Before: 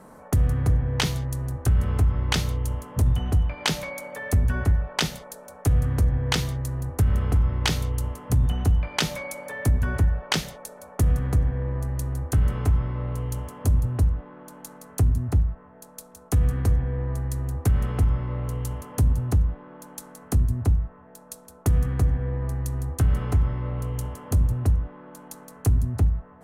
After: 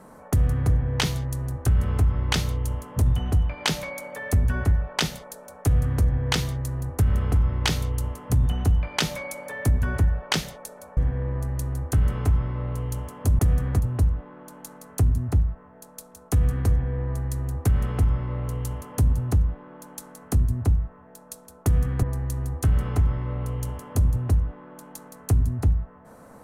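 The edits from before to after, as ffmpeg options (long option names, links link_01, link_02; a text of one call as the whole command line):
ffmpeg -i in.wav -filter_complex "[0:a]asplit=5[link_01][link_02][link_03][link_04][link_05];[link_01]atrim=end=10.972[link_06];[link_02]atrim=start=11.368:end=13.792[link_07];[link_03]atrim=start=10.968:end=11.372[link_08];[link_04]atrim=start=13.788:end=22.032[link_09];[link_05]atrim=start=22.388[link_10];[link_06][link_07]acrossfade=duration=0.004:curve1=hsin:curve2=hsin[link_11];[link_11][link_08]acrossfade=duration=0.004:curve1=hsin:curve2=hsin[link_12];[link_12][link_09]acrossfade=duration=0.004:curve1=hsin:curve2=hsin[link_13];[link_13][link_10]acrossfade=duration=0.004:curve1=hsin:curve2=hsin" out.wav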